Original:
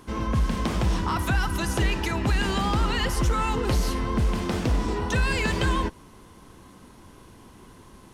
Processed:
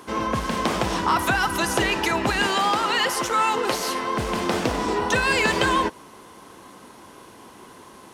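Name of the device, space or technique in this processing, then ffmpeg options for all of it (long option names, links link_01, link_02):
filter by subtraction: -filter_complex "[0:a]asplit=2[link_01][link_02];[link_02]lowpass=610,volume=-1[link_03];[link_01][link_03]amix=inputs=2:normalize=0,asettb=1/sr,asplit=3[link_04][link_05][link_06];[link_04]atrim=end=2.474[link_07];[link_05]atrim=start=2.47:end=4.19,asetpts=PTS-STARTPTS,afade=type=in:duration=0.004:curve=qsin,afade=type=out:start_time=1.716:duration=0.004:curve=qsin,highpass=frequency=390:poles=1[link_08];[link_06]atrim=start=4.186[link_09];[link_07][link_08]acrossfade=duration=0.004:curve1=hsin:curve2=qsin[link_10];[link_10][link_09]acrossfade=duration=0.004:curve1=qsin:curve2=hsin,volume=6dB"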